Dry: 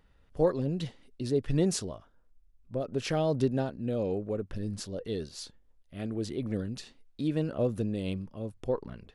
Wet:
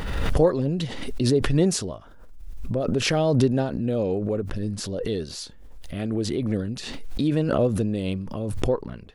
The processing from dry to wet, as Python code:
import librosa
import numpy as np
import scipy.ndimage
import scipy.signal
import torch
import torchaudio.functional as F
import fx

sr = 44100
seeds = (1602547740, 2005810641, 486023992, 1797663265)

y = fx.pre_swell(x, sr, db_per_s=35.0)
y = y * 10.0 ** (6.0 / 20.0)